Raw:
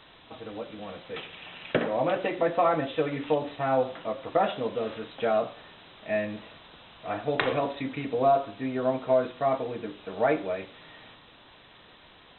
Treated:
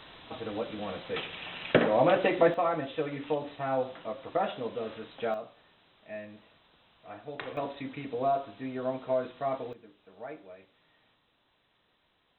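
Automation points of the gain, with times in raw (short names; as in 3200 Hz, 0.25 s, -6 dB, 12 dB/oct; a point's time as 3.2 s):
+3 dB
from 2.54 s -5 dB
from 5.34 s -13 dB
from 7.57 s -6 dB
from 9.73 s -18 dB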